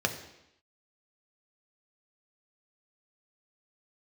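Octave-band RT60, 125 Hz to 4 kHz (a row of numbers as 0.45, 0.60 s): 0.75, 0.85, 0.80, 0.85, 0.85, 0.85 s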